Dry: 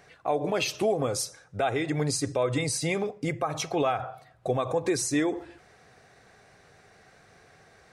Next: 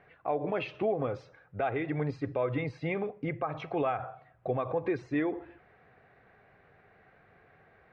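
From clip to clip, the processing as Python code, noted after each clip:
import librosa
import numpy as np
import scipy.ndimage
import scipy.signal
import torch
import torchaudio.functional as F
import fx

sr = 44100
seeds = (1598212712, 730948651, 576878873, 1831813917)

y = scipy.signal.sosfilt(scipy.signal.butter(4, 2600.0, 'lowpass', fs=sr, output='sos'), x)
y = F.gain(torch.from_numpy(y), -4.0).numpy()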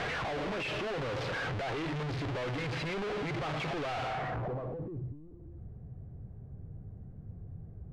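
y = np.sign(x) * np.sqrt(np.mean(np.square(x)))
y = fx.filter_sweep_lowpass(y, sr, from_hz=3400.0, to_hz=110.0, start_s=4.04, end_s=5.19, q=0.83)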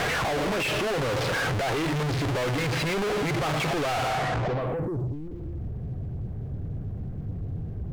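y = fx.leveller(x, sr, passes=2)
y = F.gain(torch.from_numpy(y), 7.5).numpy()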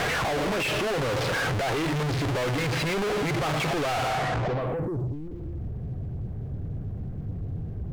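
y = x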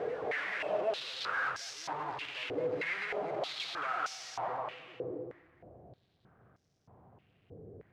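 y = fx.echo_feedback(x, sr, ms=222, feedback_pct=44, wet_db=-4.5)
y = fx.filter_held_bandpass(y, sr, hz=3.2, low_hz=460.0, high_hz=5600.0)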